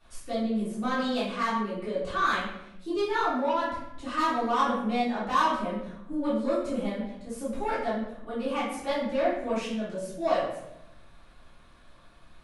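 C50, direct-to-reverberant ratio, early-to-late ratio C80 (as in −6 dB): 1.5 dB, −13.0 dB, 5.5 dB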